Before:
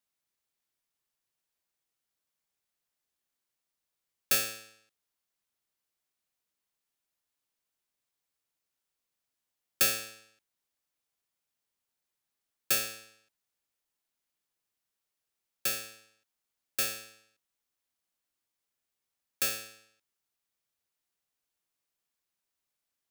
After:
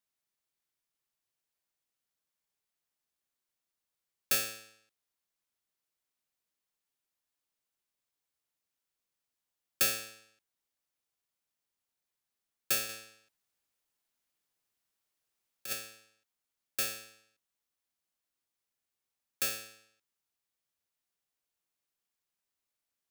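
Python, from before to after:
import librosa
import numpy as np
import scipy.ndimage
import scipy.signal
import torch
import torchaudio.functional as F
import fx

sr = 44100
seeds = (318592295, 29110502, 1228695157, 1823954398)

y = fx.over_compress(x, sr, threshold_db=-33.0, ratio=-0.5, at=(12.89, 15.73))
y = y * 10.0 ** (-2.5 / 20.0)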